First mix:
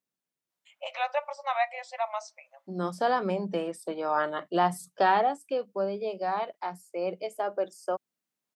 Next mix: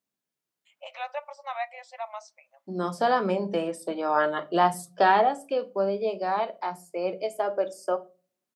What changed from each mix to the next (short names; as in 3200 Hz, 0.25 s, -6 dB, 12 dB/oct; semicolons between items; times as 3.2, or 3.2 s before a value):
first voice -5.0 dB; second voice: send on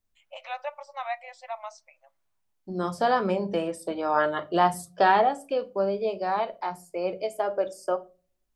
first voice: entry -0.50 s; master: remove HPF 150 Hz 24 dB/oct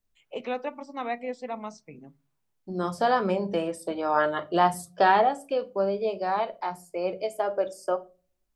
first voice: remove brick-wall FIR high-pass 530 Hz